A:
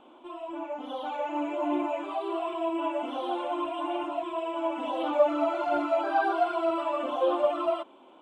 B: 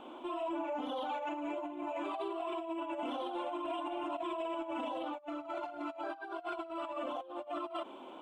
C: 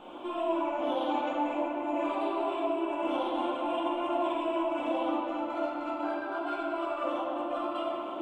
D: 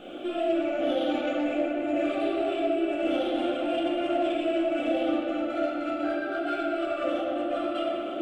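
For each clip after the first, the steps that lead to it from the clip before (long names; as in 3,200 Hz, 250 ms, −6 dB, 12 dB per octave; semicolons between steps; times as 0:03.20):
compressor whose output falls as the input rises −34 dBFS, ratio −0.5; brickwall limiter −30 dBFS, peak gain reduction 10.5 dB
rectangular room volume 150 cubic metres, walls hard, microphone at 0.85 metres
in parallel at −7.5 dB: soft clipping −31.5 dBFS, distortion −11 dB; on the sum: Butterworth band-reject 970 Hz, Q 1.7; level +3.5 dB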